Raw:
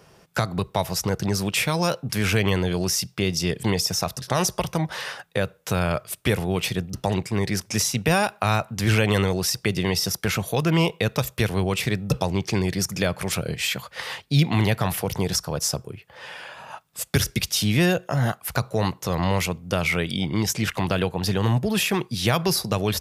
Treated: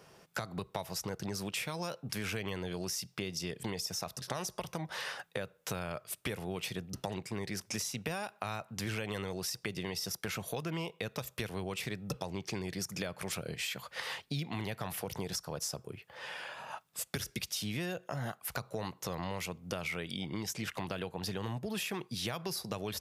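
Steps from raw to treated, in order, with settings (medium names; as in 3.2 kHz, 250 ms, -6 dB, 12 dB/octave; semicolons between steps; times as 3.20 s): bass shelf 110 Hz -9 dB; compression 4:1, threshold -31 dBFS, peak gain reduction 13 dB; trim -4.5 dB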